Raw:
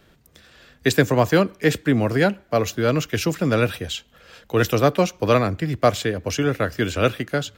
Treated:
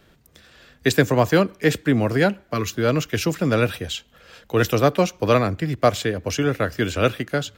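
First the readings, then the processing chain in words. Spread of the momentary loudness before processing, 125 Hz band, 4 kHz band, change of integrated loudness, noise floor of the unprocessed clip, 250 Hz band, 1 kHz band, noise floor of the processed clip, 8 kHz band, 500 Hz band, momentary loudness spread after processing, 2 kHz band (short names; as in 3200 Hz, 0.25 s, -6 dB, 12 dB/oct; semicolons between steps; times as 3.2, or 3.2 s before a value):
7 LU, 0.0 dB, 0.0 dB, 0.0 dB, -57 dBFS, 0.0 dB, 0.0 dB, -57 dBFS, 0.0 dB, 0.0 dB, 7 LU, 0.0 dB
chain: spectral gain 2.54–2.75, 440–950 Hz -14 dB; ending taper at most 560 dB/s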